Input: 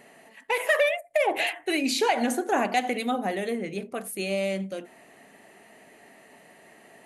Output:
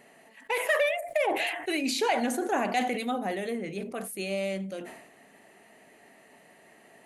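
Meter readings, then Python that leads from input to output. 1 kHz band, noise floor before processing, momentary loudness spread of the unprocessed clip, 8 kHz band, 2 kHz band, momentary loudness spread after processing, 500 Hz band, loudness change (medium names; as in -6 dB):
-2.5 dB, -54 dBFS, 10 LU, -2.5 dB, -2.5 dB, 10 LU, -2.5 dB, -2.5 dB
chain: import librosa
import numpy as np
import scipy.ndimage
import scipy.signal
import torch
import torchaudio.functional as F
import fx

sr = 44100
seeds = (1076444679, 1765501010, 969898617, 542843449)

y = fx.sustainer(x, sr, db_per_s=63.0)
y = F.gain(torch.from_numpy(y), -3.5).numpy()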